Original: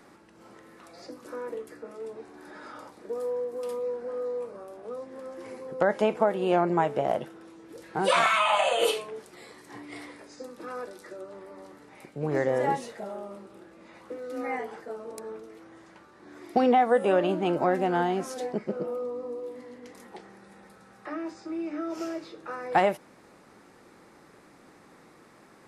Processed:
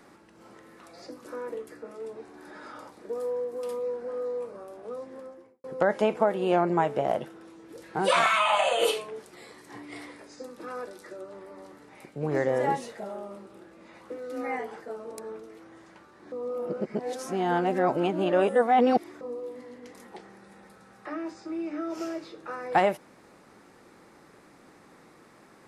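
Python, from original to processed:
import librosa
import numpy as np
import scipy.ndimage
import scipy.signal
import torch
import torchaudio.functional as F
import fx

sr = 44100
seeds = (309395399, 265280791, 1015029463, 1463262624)

y = fx.studio_fade_out(x, sr, start_s=5.06, length_s=0.58)
y = fx.edit(y, sr, fx.reverse_span(start_s=16.32, length_s=2.89), tone=tone)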